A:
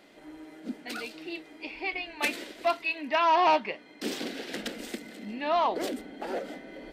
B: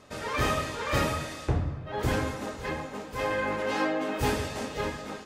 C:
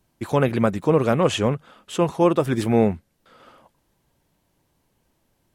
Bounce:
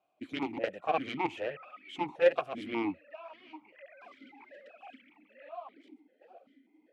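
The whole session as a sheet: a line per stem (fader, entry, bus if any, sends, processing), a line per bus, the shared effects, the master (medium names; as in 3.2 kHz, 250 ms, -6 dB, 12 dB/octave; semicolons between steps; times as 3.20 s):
-10.5 dB, 0.00 s, no send, cancelling through-zero flanger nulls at 1.8 Hz, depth 7.3 ms
-8.0 dB, 0.60 s, no send, formants replaced by sine waves; high-pass 1.2 kHz 12 dB/octave
-1.0 dB, 0.00 s, no send, Chebyshev shaper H 4 -7 dB, 6 -11 dB, 7 -10 dB, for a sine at -5 dBFS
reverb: none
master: stepped vowel filter 5.1 Hz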